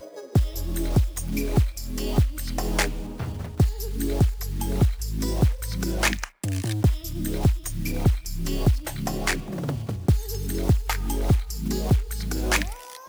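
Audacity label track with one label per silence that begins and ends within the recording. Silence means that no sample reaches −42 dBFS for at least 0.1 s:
6.290000	6.430000	silence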